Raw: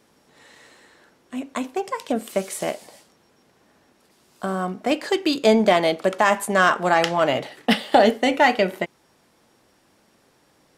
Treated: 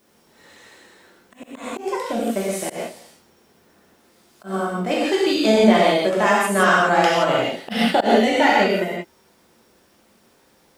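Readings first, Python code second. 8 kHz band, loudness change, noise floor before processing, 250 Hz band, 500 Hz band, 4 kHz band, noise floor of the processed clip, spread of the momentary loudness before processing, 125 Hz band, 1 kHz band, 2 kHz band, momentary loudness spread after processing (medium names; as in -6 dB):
+2.5 dB, +2.5 dB, -61 dBFS, +3.0 dB, +1.5 dB, +2.0 dB, -58 dBFS, 13 LU, +3.0 dB, +1.5 dB, +2.0 dB, 14 LU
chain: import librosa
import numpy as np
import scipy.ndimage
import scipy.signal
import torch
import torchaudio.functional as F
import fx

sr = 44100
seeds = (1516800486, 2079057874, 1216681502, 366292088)

y = fx.rev_gated(x, sr, seeds[0], gate_ms=200, shape='flat', drr_db=-6.0)
y = fx.auto_swell(y, sr, attack_ms=122.0)
y = fx.dmg_noise_colour(y, sr, seeds[1], colour='blue', level_db=-64.0)
y = y * 10.0 ** (-4.5 / 20.0)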